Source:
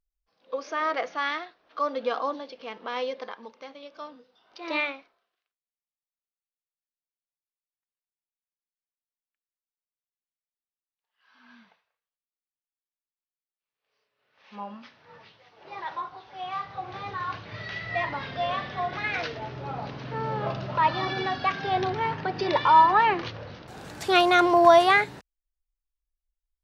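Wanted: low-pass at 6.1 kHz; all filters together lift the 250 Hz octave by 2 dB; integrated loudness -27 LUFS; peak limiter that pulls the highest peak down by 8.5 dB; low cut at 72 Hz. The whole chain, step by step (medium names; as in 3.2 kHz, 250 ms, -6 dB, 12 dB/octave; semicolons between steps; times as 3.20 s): high-pass 72 Hz; low-pass 6.1 kHz; peaking EQ 250 Hz +3.5 dB; peak limiter -13 dBFS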